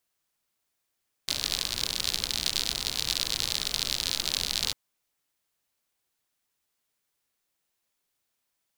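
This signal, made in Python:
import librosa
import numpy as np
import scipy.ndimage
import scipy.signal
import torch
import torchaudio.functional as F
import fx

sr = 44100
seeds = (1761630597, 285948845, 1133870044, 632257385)

y = fx.rain(sr, seeds[0], length_s=3.45, drops_per_s=72.0, hz=4100.0, bed_db=-10.0)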